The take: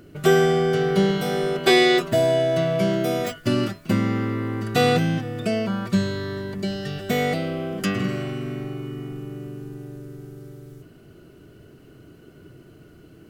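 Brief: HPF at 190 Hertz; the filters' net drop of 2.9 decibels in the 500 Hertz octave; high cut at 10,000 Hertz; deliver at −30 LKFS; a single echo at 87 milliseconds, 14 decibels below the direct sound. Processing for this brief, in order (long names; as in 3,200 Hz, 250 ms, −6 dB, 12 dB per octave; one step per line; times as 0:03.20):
high-pass filter 190 Hz
low-pass filter 10,000 Hz
parametric band 500 Hz −4 dB
single-tap delay 87 ms −14 dB
level −6 dB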